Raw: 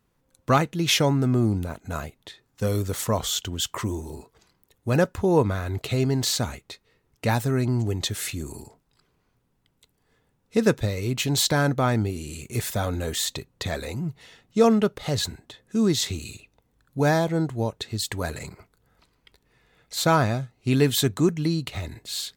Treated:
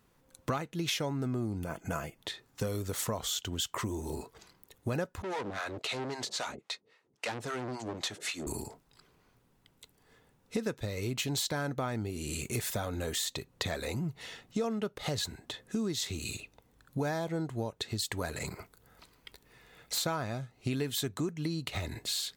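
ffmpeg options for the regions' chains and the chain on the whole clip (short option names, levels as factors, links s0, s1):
-filter_complex "[0:a]asettb=1/sr,asplit=3[s0][s1][s2];[s0]atrim=end=1.634[s3];[s1]atrim=start=1.63:end=2.19,asetpts=PTS-STARTPTS,afade=t=in:d=0.004:c=qsin,afade=t=out:st=0.556:d=0.004:c=qsin,asuperstop=centerf=3900:order=20:qfactor=6,aecho=1:1:6:0.4,atrim=end_sample=24696[s4];[s2]atrim=start=2.186[s5];[s3][s4]acrossfade=d=0.004:c1=hsin:c2=qsin[s6];[s6][s5]acrossfade=d=0.004:c1=qsin:c2=hsin,asettb=1/sr,asplit=3[s7][s8][s9];[s7]atrim=end=5.224[s10];[s8]atrim=start=5.22:end=8.47,asetpts=PTS-STARTPTS,afade=t=in:d=0.004:c=qsin,afade=t=out:st=3.246:d=0.004:c=qsin,acrossover=split=590[s11][s12];[s11]aeval=exprs='val(0)*(1-1/2+1/2*cos(2*PI*3.7*n/s))':c=same[s13];[s12]aeval=exprs='val(0)*(1-1/2-1/2*cos(2*PI*3.7*n/s))':c=same[s14];[s13][s14]amix=inputs=2:normalize=0,volume=39.8,asoftclip=hard,volume=0.0251,highpass=200,lowpass=7600[s15];[s9]atrim=start=8.466[s16];[s10][s15]acrossfade=d=0.004:c1=hsin:c2=qsin[s17];[s17][s16]acrossfade=d=0.004:c1=qsin:c2=hsin,asettb=1/sr,asplit=3[s18][s19][s20];[s18]atrim=end=18.464[s21];[s19]atrim=start=18.46:end=19.98,asetpts=PTS-STARTPTS,afade=t=in:d=0.004:c=qsin,afade=t=out:st=1.516:d=0.004:c=qsin,highshelf=f=10000:g=7,asoftclip=type=hard:threshold=0.0299[s22];[s20]atrim=start=19.976[s23];[s21][s22]acrossfade=d=0.004:c1=hsin:c2=qsin[s24];[s24][s23]acrossfade=d=0.004:c1=qsin:c2=hsin,lowshelf=f=210:g=-4.5,acompressor=threshold=0.0158:ratio=6,volume=1.68"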